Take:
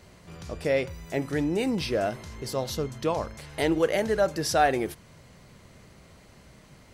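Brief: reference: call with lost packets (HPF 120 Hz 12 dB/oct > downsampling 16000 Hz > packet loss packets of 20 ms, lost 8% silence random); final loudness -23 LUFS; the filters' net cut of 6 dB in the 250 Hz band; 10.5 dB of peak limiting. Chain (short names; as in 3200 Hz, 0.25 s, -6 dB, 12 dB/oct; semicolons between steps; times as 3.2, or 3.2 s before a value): bell 250 Hz -8 dB; limiter -20.5 dBFS; HPF 120 Hz 12 dB/oct; downsampling 16000 Hz; packet loss packets of 20 ms, lost 8% silence random; gain +10 dB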